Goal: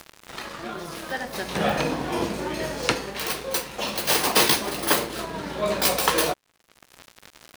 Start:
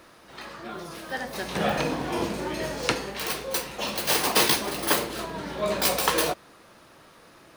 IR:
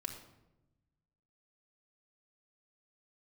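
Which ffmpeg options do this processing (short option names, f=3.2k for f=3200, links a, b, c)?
-af "aeval=exprs='sgn(val(0))*max(abs(val(0))-0.00501,0)':c=same,acompressor=mode=upward:threshold=-29dB:ratio=2.5,volume=2.5dB"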